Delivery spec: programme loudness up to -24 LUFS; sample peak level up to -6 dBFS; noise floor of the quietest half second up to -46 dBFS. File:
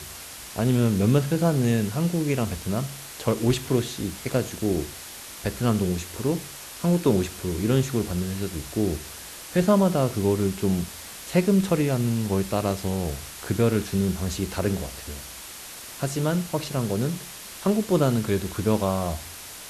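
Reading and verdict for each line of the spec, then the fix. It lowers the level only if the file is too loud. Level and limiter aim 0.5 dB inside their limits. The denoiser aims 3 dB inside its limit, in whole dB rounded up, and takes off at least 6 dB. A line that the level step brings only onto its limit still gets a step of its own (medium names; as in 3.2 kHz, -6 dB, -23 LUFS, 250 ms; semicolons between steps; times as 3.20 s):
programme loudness -25.0 LUFS: pass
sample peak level -7.5 dBFS: pass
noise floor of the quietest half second -40 dBFS: fail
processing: noise reduction 9 dB, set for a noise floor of -40 dBFS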